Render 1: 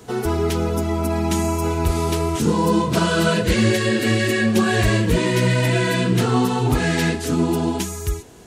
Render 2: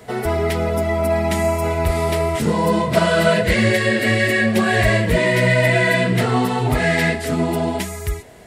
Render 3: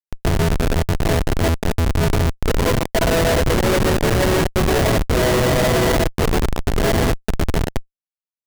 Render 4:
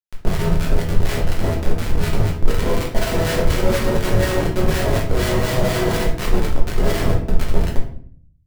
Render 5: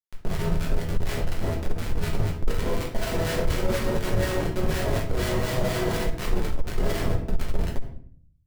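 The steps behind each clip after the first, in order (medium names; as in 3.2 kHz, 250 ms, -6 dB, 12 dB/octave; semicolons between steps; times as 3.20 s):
graphic EQ with 31 bands 315 Hz -6 dB, 630 Hz +11 dB, 2 kHz +11 dB, 6.3 kHz -7 dB
resonant low shelf 300 Hz -9 dB, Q 3; Schmitt trigger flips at -12.5 dBFS; trim +1.5 dB
harmonic tremolo 4.1 Hz, depth 70%, crossover 1.1 kHz; simulated room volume 68 m³, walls mixed, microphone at 0.98 m; trim -4.5 dB
transformer saturation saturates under 26 Hz; trim -6.5 dB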